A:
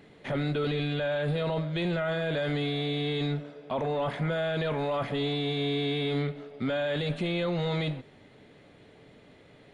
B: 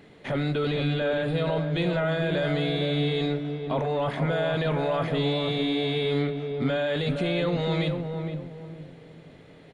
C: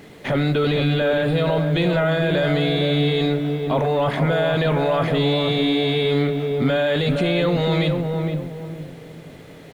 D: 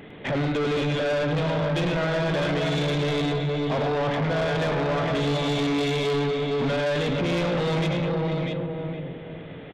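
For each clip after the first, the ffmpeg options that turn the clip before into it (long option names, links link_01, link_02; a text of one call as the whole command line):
ffmpeg -i in.wav -filter_complex "[0:a]asplit=2[link_01][link_02];[link_02]adelay=463,lowpass=frequency=810:poles=1,volume=-4dB,asplit=2[link_03][link_04];[link_04]adelay=463,lowpass=frequency=810:poles=1,volume=0.38,asplit=2[link_05][link_06];[link_06]adelay=463,lowpass=frequency=810:poles=1,volume=0.38,asplit=2[link_07][link_08];[link_08]adelay=463,lowpass=frequency=810:poles=1,volume=0.38,asplit=2[link_09][link_10];[link_10]adelay=463,lowpass=frequency=810:poles=1,volume=0.38[link_11];[link_01][link_03][link_05][link_07][link_09][link_11]amix=inputs=6:normalize=0,volume=2.5dB" out.wav
ffmpeg -i in.wav -filter_complex "[0:a]asplit=2[link_01][link_02];[link_02]alimiter=limit=-23dB:level=0:latency=1,volume=-1.5dB[link_03];[link_01][link_03]amix=inputs=2:normalize=0,acrusher=bits=8:mix=0:aa=0.5,volume=3dB" out.wav
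ffmpeg -i in.wav -af "aresample=8000,aresample=44100,aecho=1:1:105|654:0.501|0.398,asoftclip=type=tanh:threshold=-21.5dB" out.wav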